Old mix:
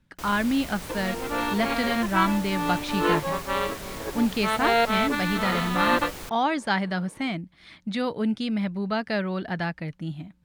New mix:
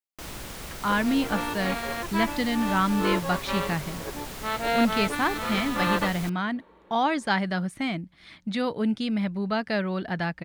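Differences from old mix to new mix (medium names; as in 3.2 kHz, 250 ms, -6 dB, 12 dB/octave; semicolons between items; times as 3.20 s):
speech: entry +0.60 s; second sound -3.5 dB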